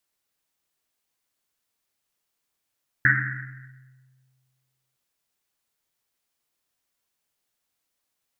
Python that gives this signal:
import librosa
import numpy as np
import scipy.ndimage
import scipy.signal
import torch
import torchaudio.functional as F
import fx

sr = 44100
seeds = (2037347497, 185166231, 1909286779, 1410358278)

y = fx.risset_drum(sr, seeds[0], length_s=1.91, hz=130.0, decay_s=1.92, noise_hz=1700.0, noise_width_hz=520.0, noise_pct=65)